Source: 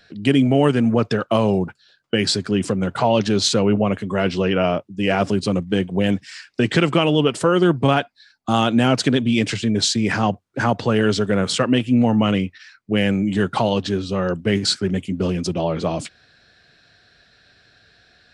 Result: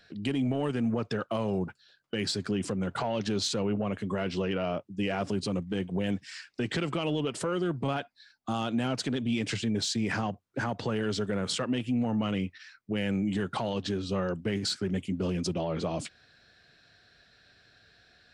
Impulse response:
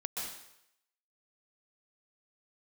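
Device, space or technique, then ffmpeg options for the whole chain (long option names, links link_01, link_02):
soft clipper into limiter: -af "asoftclip=type=tanh:threshold=-6dB,alimiter=limit=-15.5dB:level=0:latency=1:release=144,volume=-6dB"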